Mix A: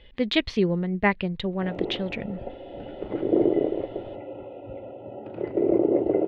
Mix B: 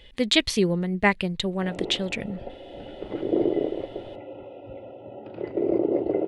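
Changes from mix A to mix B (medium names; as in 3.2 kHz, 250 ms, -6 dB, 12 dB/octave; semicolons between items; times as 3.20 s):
background: send -11.5 dB; master: remove distance through air 250 m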